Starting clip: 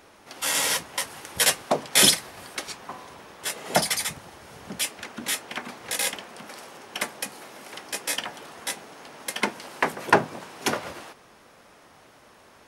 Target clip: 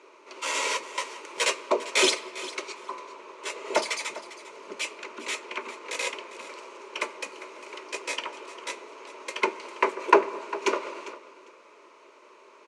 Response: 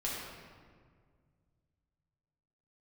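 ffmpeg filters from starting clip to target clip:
-filter_complex "[0:a]asuperstop=centerf=760:order=4:qfactor=4,highpass=f=340:w=0.5412,highpass=f=340:w=1.3066,equalizer=f=380:t=q:w=4:g=9,equalizer=f=1k:t=q:w=4:g=6,equalizer=f=1.7k:t=q:w=4:g=-9,equalizer=f=2.4k:t=q:w=4:g=6,equalizer=f=3.4k:t=q:w=4:g=-6,equalizer=f=5.2k:t=q:w=4:g=-7,lowpass=f=6.9k:w=0.5412,lowpass=f=6.9k:w=1.3066,aecho=1:1:401|802:0.158|0.0269,asplit=2[a][b];[1:a]atrim=start_sample=2205[c];[b][c]afir=irnorm=-1:irlink=0,volume=-20dB[d];[a][d]amix=inputs=2:normalize=0,volume=-1.5dB"

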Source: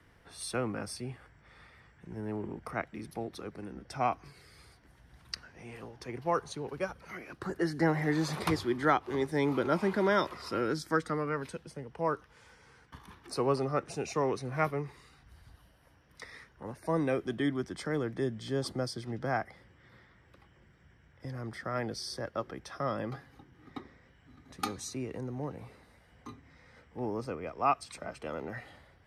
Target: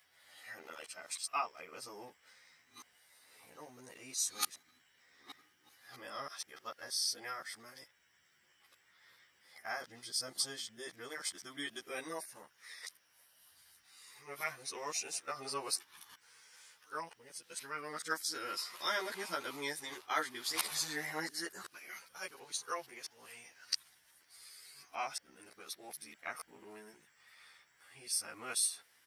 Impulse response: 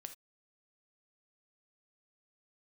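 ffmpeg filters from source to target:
-filter_complex "[0:a]areverse,aderivative,asplit=2[a][b];[b]adelay=11.9,afreqshift=0.97[c];[a][c]amix=inputs=2:normalize=1,volume=11.5dB"

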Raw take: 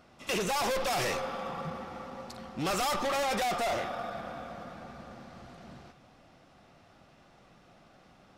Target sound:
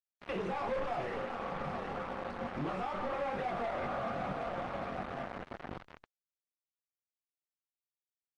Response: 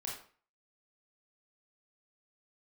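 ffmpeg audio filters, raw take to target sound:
-filter_complex "[0:a]flanger=delay=20:depth=6.8:speed=2.3,acontrast=75,asplit=2[a][b];[b]adelay=21,volume=-6dB[c];[a][c]amix=inputs=2:normalize=0,asplit=2[d][e];[e]aecho=0:1:767|1534|2301|3068|3835:0.251|0.116|0.0532|0.0244|0.0112[f];[d][f]amix=inputs=2:normalize=0,asplit=3[g][h][i];[g]afade=t=out:st=1.23:d=0.02[j];[h]acompressor=threshold=-33dB:ratio=8,afade=t=in:st=1.23:d=0.02,afade=t=out:st=3.18:d=0.02[k];[i]afade=t=in:st=3.18:d=0.02[l];[j][k][l]amix=inputs=3:normalize=0,alimiter=level_in=4dB:limit=-24dB:level=0:latency=1:release=33,volume=-4dB,asplit=3[m][n][o];[m]afade=t=out:st=3.78:d=0.02[p];[n]equalizer=f=120:t=o:w=1.2:g=5,afade=t=in:st=3.78:d=0.02,afade=t=out:st=4.34:d=0.02[q];[o]afade=t=in:st=4.34:d=0.02[r];[p][q][r]amix=inputs=3:normalize=0,acrusher=bits=5:mix=0:aa=0.000001,lowpass=1.8k" -ar 48000 -c:a libopus -b:a 32k

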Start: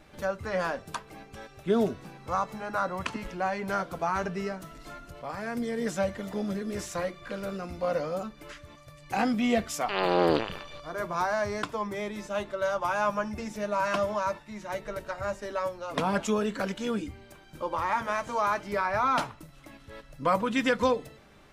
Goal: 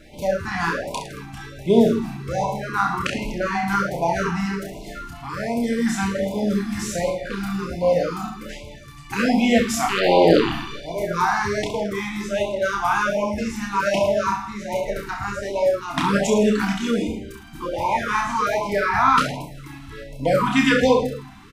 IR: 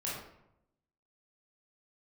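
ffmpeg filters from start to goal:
-filter_complex "[0:a]aecho=1:1:30|66|109.2|161|223.2:0.631|0.398|0.251|0.158|0.1,asplit=2[a][b];[1:a]atrim=start_sample=2205[c];[b][c]afir=irnorm=-1:irlink=0,volume=-7.5dB[d];[a][d]amix=inputs=2:normalize=0,afftfilt=real='re*(1-between(b*sr/1024,460*pow(1500/460,0.5+0.5*sin(2*PI*1.3*pts/sr))/1.41,460*pow(1500/460,0.5+0.5*sin(2*PI*1.3*pts/sr))*1.41))':imag='im*(1-between(b*sr/1024,460*pow(1500/460,0.5+0.5*sin(2*PI*1.3*pts/sr))/1.41,460*pow(1500/460,0.5+0.5*sin(2*PI*1.3*pts/sr))*1.41))':win_size=1024:overlap=0.75,volume=5dB"

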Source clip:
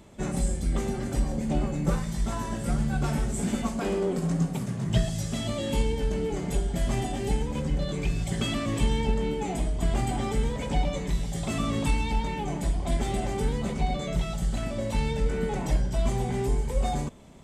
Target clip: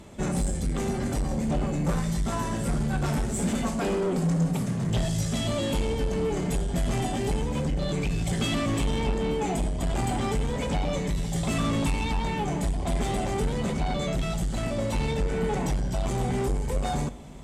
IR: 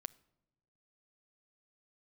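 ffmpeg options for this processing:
-filter_complex "[0:a]asoftclip=type=tanh:threshold=-25.5dB[a];[1:a]atrim=start_sample=2205,asetrate=25578,aresample=44100[b];[a][b]afir=irnorm=-1:irlink=0,volume=6dB"

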